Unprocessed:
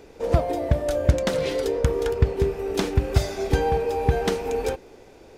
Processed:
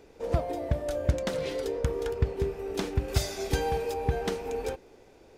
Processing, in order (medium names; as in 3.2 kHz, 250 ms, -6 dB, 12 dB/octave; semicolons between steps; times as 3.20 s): 3.08–3.94 s: treble shelf 2.8 kHz +10 dB; trim -7 dB